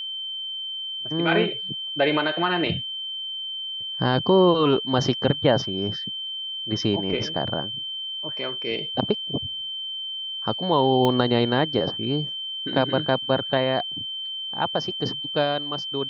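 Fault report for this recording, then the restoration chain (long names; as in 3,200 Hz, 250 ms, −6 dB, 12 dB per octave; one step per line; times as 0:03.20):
whistle 3,100 Hz −29 dBFS
0:11.05: click −10 dBFS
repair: click removal
notch filter 3,100 Hz, Q 30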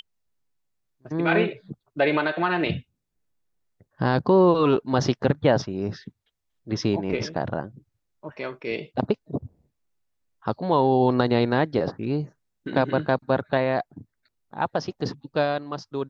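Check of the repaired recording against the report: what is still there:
0:11.05: click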